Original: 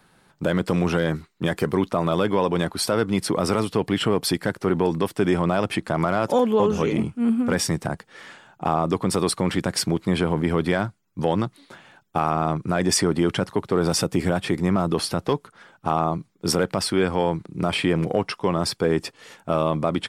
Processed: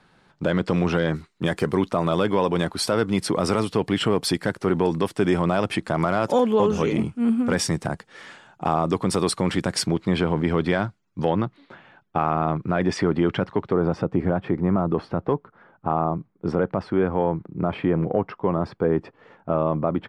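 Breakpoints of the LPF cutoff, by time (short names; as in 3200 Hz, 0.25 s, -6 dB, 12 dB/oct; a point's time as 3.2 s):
5500 Hz
from 1.14 s 10000 Hz
from 9.87 s 5400 Hz
from 11.3 s 2700 Hz
from 13.73 s 1300 Hz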